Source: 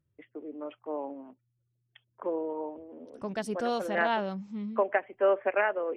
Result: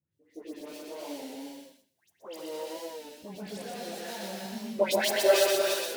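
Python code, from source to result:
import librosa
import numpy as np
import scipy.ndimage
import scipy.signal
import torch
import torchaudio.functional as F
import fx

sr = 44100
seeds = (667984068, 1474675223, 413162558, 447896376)

p1 = fx.dead_time(x, sr, dead_ms=0.15)
p2 = scipy.signal.sosfilt(scipy.signal.butter(2, 110.0, 'highpass', fs=sr, output='sos'), p1)
p3 = fx.high_shelf(p2, sr, hz=2200.0, db=9.0)
p4 = fx.hum_notches(p3, sr, base_hz=60, count=8)
p5 = fx.level_steps(p4, sr, step_db=22)
p6 = fx.dispersion(p5, sr, late='highs', ms=126.0, hz=1800.0)
p7 = fx.chorus_voices(p6, sr, voices=2, hz=0.97, base_ms=15, depth_ms=4.4, mix_pct=60)
p8 = fx.peak_eq(p7, sr, hz=1200.0, db=-8.5, octaves=0.55)
p9 = p8 + fx.echo_feedback(p8, sr, ms=124, feedback_pct=16, wet_db=-3, dry=0)
p10 = fx.rev_gated(p9, sr, seeds[0], gate_ms=380, shape='rising', drr_db=2.5)
p11 = fx.record_warp(p10, sr, rpm=33.33, depth_cents=100.0)
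y = p11 * 10.0 ** (6.0 / 20.0)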